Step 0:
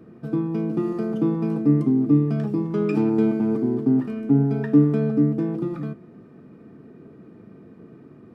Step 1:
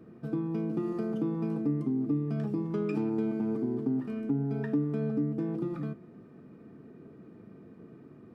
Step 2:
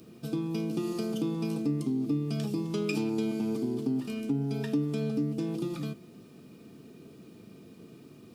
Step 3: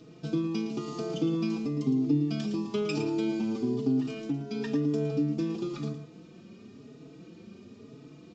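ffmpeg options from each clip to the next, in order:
-af "acompressor=threshold=-23dB:ratio=3,volume=-5dB"
-af "aexciter=amount=9:drive=4.1:freq=2.6k"
-filter_complex "[0:a]asplit=2[a][b];[b]aecho=0:1:112:0.316[c];[a][c]amix=inputs=2:normalize=0,aresample=16000,aresample=44100,asplit=2[d][e];[e]adelay=4.3,afreqshift=1[f];[d][f]amix=inputs=2:normalize=1,volume=4dB"

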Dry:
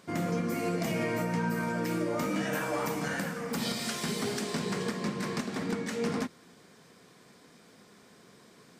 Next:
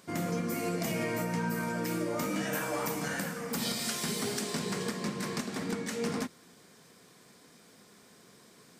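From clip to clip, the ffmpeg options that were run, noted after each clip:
-af "highshelf=f=6.1k:g=8.5,volume=-2dB"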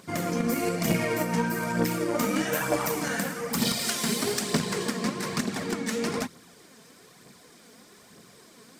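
-filter_complex "[0:a]aphaser=in_gain=1:out_gain=1:delay=4.7:decay=0.45:speed=1.1:type=triangular,asplit=2[a][b];[b]acrusher=bits=3:mix=0:aa=0.5,volume=-9dB[c];[a][c]amix=inputs=2:normalize=0,volume=4dB"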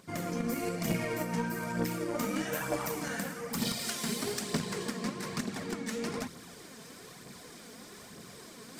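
-af "lowshelf=f=76:g=7,areverse,acompressor=mode=upward:threshold=-31dB:ratio=2.5,areverse,volume=-7dB"

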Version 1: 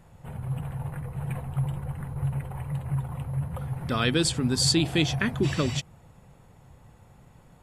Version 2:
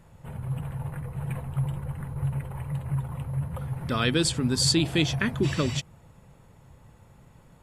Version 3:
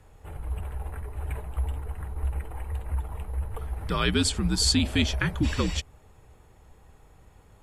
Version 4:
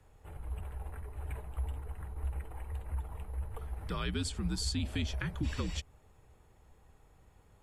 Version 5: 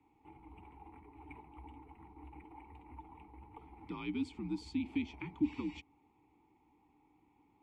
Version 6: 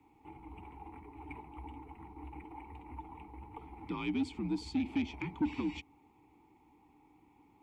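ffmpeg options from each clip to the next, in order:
-af "bandreject=f=750:w=12"
-af "afreqshift=-70"
-filter_complex "[0:a]acrossover=split=170[a][b];[b]acompressor=threshold=-30dB:ratio=2.5[c];[a][c]amix=inputs=2:normalize=0,volume=-7.5dB"
-filter_complex "[0:a]asplit=3[a][b][c];[a]bandpass=f=300:t=q:w=8,volume=0dB[d];[b]bandpass=f=870:t=q:w=8,volume=-6dB[e];[c]bandpass=f=2.24k:t=q:w=8,volume=-9dB[f];[d][e][f]amix=inputs=3:normalize=0,volume=9.5dB"
-af "asoftclip=type=tanh:threshold=-31dB,volume=5.5dB"

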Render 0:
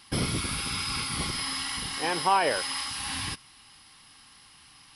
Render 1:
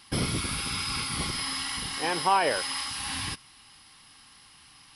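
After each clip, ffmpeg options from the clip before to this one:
-af anull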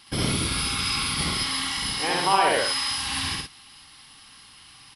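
-af "equalizer=f=3.5k:w=1.5:g=3,aecho=1:1:67.06|116.6:1|0.631"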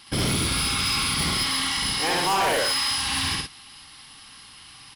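-af "volume=22.5dB,asoftclip=hard,volume=-22.5dB,volume=3dB"

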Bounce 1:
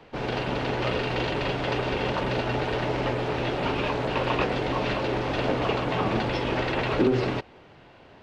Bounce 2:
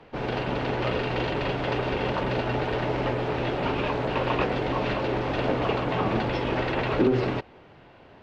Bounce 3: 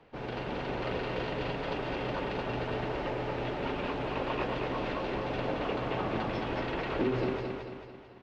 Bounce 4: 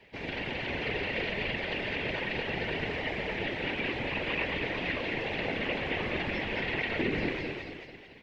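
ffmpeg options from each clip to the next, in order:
-af "aemphasis=mode=reproduction:type=cd"
-af "aecho=1:1:221|442|663|884|1105|1326:0.631|0.303|0.145|0.0698|0.0335|0.0161,volume=-8.5dB"
-filter_complex "[0:a]acrossover=split=3500[a][b];[b]acompressor=threshold=-59dB:ratio=4:attack=1:release=60[c];[a][c]amix=inputs=2:normalize=0,afftfilt=real='hypot(re,im)*cos(2*PI*random(0))':imag='hypot(re,im)*sin(2*PI*random(1))':win_size=512:overlap=0.75,highshelf=f=1.6k:t=q:w=3:g=7,volume=5dB"

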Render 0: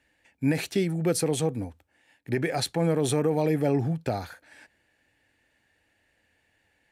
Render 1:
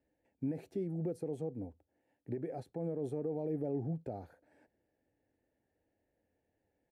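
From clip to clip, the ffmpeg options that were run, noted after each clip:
-af "lowshelf=f=250:g=-8.5,alimiter=level_in=1.5dB:limit=-24dB:level=0:latency=1:release=275,volume=-1.5dB,firequalizer=gain_entry='entry(430,0);entry(760,-7);entry(1100,-18);entry(3400,-27);entry(12000,-23)':delay=0.05:min_phase=1,volume=-1.5dB"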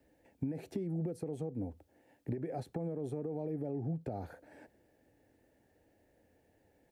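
-filter_complex "[0:a]acompressor=threshold=-45dB:ratio=6,acrossover=split=350|590|4600[a][b][c][d];[b]alimiter=level_in=30.5dB:limit=-24dB:level=0:latency=1:release=266,volume=-30.5dB[e];[a][e][c][d]amix=inputs=4:normalize=0,volume=11.5dB"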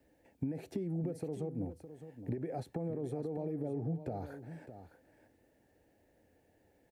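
-af "aecho=1:1:611:0.266"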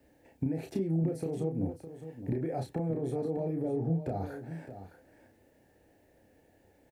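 -filter_complex "[0:a]asplit=2[a][b];[b]adelay=31,volume=-4.5dB[c];[a][c]amix=inputs=2:normalize=0,volume=4dB"

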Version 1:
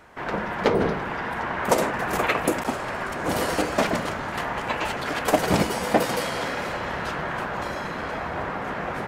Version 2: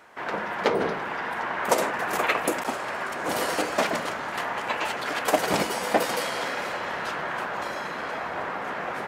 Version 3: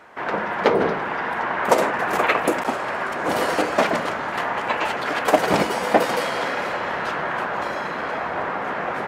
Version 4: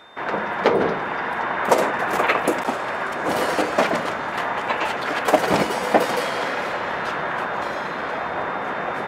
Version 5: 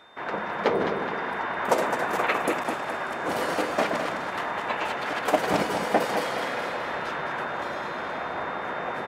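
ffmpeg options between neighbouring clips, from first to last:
-af "highpass=f=430:p=1"
-af "highshelf=f=3.9k:g=-9.5,volume=6dB"
-af "aeval=exprs='val(0)+0.00316*sin(2*PI*3600*n/s)':c=same"
-af "aecho=1:1:210|420|630|840|1050:0.422|0.19|0.0854|0.0384|0.0173,volume=-6dB"

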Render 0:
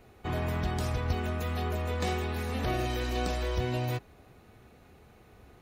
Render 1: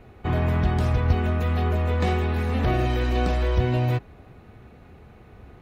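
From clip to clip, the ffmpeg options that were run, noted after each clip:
-af "bass=f=250:g=4,treble=f=4k:g=-11,volume=6dB"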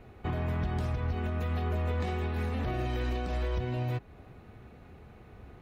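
-af "alimiter=limit=-20dB:level=0:latency=1:release=208,volume=-3.5dB"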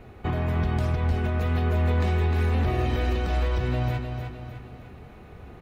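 -af "aecho=1:1:305|610|915|1220|1525:0.473|0.213|0.0958|0.0431|0.0194,volume=5.5dB"

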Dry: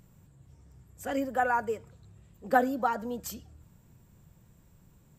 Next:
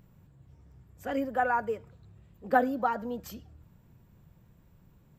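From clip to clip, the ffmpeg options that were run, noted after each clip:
-af "equalizer=f=8.8k:t=o:w=1.2:g=-13"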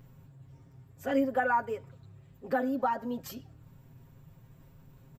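-af "aecho=1:1:7.5:0.79,areverse,acompressor=mode=upward:threshold=-49dB:ratio=2.5,areverse,alimiter=limit=-17.5dB:level=0:latency=1:release=330"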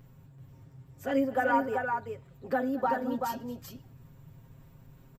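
-af "aecho=1:1:222|384:0.133|0.631"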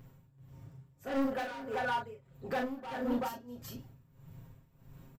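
-filter_complex "[0:a]volume=29.5dB,asoftclip=hard,volume=-29.5dB,tremolo=f=1.6:d=0.81,asplit=2[a][b];[b]adelay=37,volume=-5dB[c];[a][c]amix=inputs=2:normalize=0"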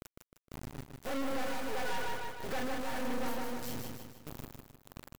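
-af "acrusher=bits=5:dc=4:mix=0:aa=0.000001,aecho=1:1:154|308|462|616|770|924:0.531|0.244|0.112|0.0517|0.0238|0.0109,asoftclip=type=tanh:threshold=-35.5dB,volume=8dB"

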